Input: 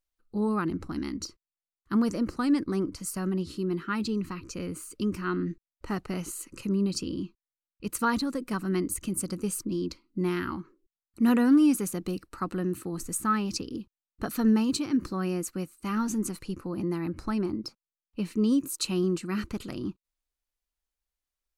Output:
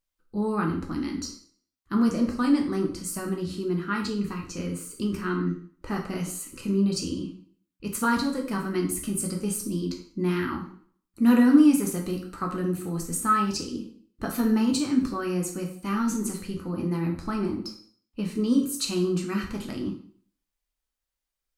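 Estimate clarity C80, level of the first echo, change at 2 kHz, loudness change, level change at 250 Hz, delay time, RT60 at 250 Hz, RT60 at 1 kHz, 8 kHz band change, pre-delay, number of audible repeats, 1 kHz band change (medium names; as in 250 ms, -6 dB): 11.0 dB, no echo, +3.0 dB, +2.5 dB, +2.5 dB, no echo, 0.50 s, 0.50 s, +2.5 dB, 4 ms, no echo, +3.5 dB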